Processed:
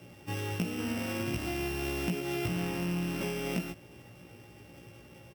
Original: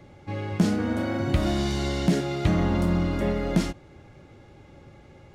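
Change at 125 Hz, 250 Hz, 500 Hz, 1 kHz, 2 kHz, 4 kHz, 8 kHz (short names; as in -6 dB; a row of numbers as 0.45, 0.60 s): -10.0, -9.0, -7.5, -8.0, -2.5, -5.0, -2.5 dB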